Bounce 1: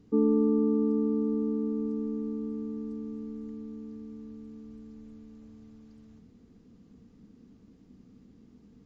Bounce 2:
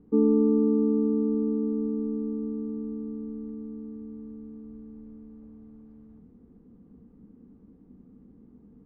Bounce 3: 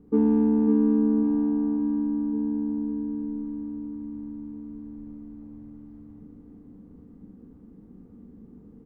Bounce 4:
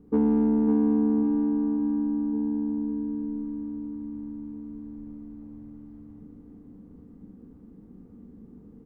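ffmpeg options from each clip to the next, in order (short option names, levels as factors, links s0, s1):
-af "lowpass=1000,equalizer=f=110:t=o:w=0.24:g=-12,bandreject=f=650:w=13,volume=1.41"
-filter_complex "[0:a]asplit=2[s0][s1];[s1]asoftclip=type=tanh:threshold=0.0562,volume=0.316[s2];[s0][s2]amix=inputs=2:normalize=0,asplit=2[s3][s4];[s4]adelay=42,volume=0.501[s5];[s3][s5]amix=inputs=2:normalize=0,aecho=1:1:551|1102|1653|2204|2755|3306|3857|4408:0.501|0.301|0.18|0.108|0.065|0.039|0.0234|0.014"
-af "asoftclip=type=tanh:threshold=0.2"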